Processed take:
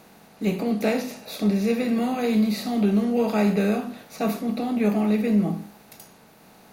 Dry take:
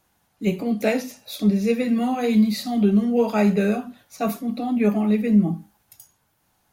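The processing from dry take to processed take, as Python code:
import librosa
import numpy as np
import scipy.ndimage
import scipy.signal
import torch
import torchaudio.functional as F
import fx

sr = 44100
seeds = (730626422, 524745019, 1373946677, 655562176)

y = fx.bin_compress(x, sr, power=0.6)
y = y * librosa.db_to_amplitude(-5.0)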